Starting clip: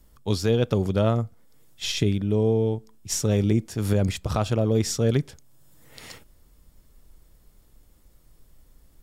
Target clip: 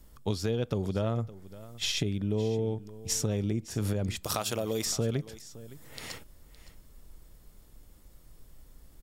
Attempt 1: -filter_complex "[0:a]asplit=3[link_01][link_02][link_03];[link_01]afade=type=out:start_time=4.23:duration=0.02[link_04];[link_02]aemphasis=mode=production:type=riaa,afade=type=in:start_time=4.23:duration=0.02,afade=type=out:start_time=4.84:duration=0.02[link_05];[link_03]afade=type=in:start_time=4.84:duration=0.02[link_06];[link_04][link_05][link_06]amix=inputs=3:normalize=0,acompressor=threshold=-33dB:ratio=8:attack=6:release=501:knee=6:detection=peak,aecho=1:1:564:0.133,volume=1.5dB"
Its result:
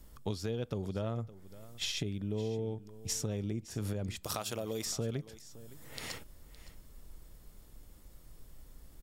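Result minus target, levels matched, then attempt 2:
downward compressor: peak gain reduction +6 dB
-filter_complex "[0:a]asplit=3[link_01][link_02][link_03];[link_01]afade=type=out:start_time=4.23:duration=0.02[link_04];[link_02]aemphasis=mode=production:type=riaa,afade=type=in:start_time=4.23:duration=0.02,afade=type=out:start_time=4.84:duration=0.02[link_05];[link_03]afade=type=in:start_time=4.84:duration=0.02[link_06];[link_04][link_05][link_06]amix=inputs=3:normalize=0,acompressor=threshold=-26dB:ratio=8:attack=6:release=501:knee=6:detection=peak,aecho=1:1:564:0.133,volume=1.5dB"

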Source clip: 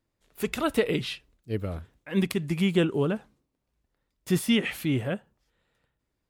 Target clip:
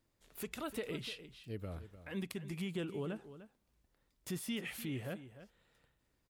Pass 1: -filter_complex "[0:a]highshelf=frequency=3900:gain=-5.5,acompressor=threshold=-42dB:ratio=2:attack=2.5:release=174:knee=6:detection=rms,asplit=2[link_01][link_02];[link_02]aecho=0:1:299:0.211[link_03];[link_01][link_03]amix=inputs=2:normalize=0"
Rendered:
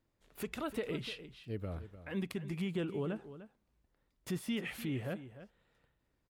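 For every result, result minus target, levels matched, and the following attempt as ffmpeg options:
8,000 Hz band −6.0 dB; downward compressor: peak gain reduction −3.5 dB
-filter_complex "[0:a]highshelf=frequency=3900:gain=3.5,acompressor=threshold=-42dB:ratio=2:attack=2.5:release=174:knee=6:detection=rms,asplit=2[link_01][link_02];[link_02]aecho=0:1:299:0.211[link_03];[link_01][link_03]amix=inputs=2:normalize=0"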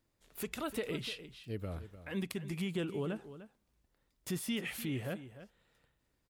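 downward compressor: peak gain reduction −3 dB
-filter_complex "[0:a]highshelf=frequency=3900:gain=3.5,acompressor=threshold=-48.5dB:ratio=2:attack=2.5:release=174:knee=6:detection=rms,asplit=2[link_01][link_02];[link_02]aecho=0:1:299:0.211[link_03];[link_01][link_03]amix=inputs=2:normalize=0"

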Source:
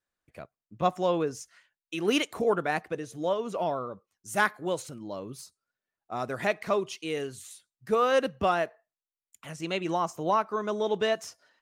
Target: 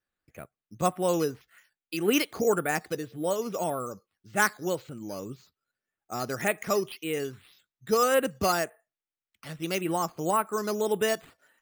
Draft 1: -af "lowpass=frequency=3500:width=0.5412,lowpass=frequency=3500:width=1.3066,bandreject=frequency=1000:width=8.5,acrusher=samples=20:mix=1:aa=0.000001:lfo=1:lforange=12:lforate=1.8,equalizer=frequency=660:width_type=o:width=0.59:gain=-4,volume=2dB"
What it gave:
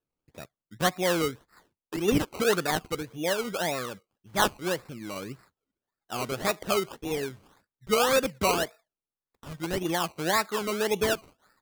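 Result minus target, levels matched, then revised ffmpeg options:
sample-and-hold swept by an LFO: distortion +12 dB
-af "lowpass=frequency=3500:width=0.5412,lowpass=frequency=3500:width=1.3066,bandreject=frequency=1000:width=8.5,acrusher=samples=6:mix=1:aa=0.000001:lfo=1:lforange=3.6:lforate=1.8,equalizer=frequency=660:width_type=o:width=0.59:gain=-4,volume=2dB"

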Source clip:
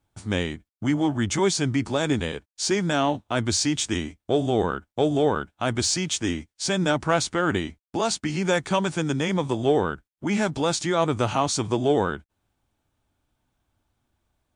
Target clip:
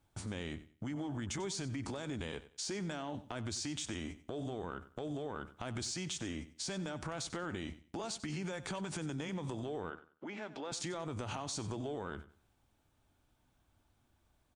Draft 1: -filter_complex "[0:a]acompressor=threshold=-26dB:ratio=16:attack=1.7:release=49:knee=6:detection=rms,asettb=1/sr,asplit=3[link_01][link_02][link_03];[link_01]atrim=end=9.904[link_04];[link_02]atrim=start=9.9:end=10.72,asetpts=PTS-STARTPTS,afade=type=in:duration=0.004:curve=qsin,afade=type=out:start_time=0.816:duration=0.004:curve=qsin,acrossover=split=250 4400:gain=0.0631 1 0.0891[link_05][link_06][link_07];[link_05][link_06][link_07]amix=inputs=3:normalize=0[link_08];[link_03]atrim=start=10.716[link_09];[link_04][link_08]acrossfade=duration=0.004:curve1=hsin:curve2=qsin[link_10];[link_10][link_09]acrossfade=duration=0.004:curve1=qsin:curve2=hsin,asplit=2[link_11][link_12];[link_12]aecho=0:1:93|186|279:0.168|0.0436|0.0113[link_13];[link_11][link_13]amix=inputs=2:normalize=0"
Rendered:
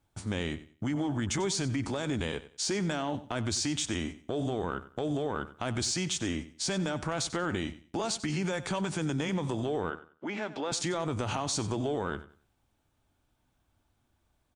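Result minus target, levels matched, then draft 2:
downward compressor: peak gain reduction −9 dB
-filter_complex "[0:a]acompressor=threshold=-35.5dB:ratio=16:attack=1.7:release=49:knee=6:detection=rms,asettb=1/sr,asplit=3[link_01][link_02][link_03];[link_01]atrim=end=9.904[link_04];[link_02]atrim=start=9.9:end=10.72,asetpts=PTS-STARTPTS,afade=type=in:duration=0.004:curve=qsin,afade=type=out:start_time=0.816:duration=0.004:curve=qsin,acrossover=split=250 4400:gain=0.0631 1 0.0891[link_05][link_06][link_07];[link_05][link_06][link_07]amix=inputs=3:normalize=0[link_08];[link_03]atrim=start=10.716[link_09];[link_04][link_08]acrossfade=duration=0.004:curve1=hsin:curve2=qsin[link_10];[link_10][link_09]acrossfade=duration=0.004:curve1=qsin:curve2=hsin,asplit=2[link_11][link_12];[link_12]aecho=0:1:93|186|279:0.168|0.0436|0.0113[link_13];[link_11][link_13]amix=inputs=2:normalize=0"

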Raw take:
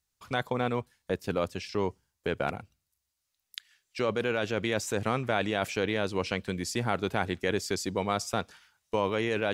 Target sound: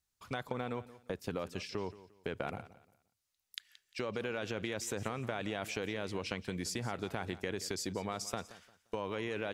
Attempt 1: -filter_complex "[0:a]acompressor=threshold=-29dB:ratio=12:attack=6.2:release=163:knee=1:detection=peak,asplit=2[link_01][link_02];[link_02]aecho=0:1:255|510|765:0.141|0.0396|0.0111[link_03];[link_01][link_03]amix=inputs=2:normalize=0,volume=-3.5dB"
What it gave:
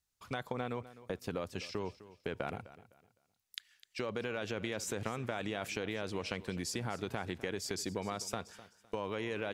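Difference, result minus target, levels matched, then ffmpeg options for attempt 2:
echo 80 ms late
-filter_complex "[0:a]acompressor=threshold=-29dB:ratio=12:attack=6.2:release=163:knee=1:detection=peak,asplit=2[link_01][link_02];[link_02]aecho=0:1:175|350|525:0.141|0.0396|0.0111[link_03];[link_01][link_03]amix=inputs=2:normalize=0,volume=-3.5dB"

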